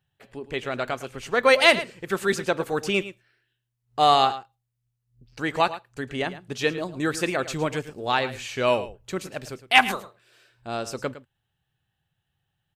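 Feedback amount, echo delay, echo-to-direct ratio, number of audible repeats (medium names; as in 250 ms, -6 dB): no regular repeats, 109 ms, -14.5 dB, 1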